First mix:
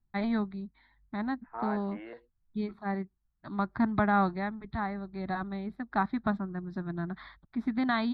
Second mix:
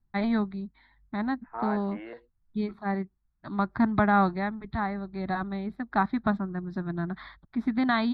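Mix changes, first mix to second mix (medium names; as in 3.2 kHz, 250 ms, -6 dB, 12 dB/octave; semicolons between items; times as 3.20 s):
first voice +3.5 dB; second voice +3.0 dB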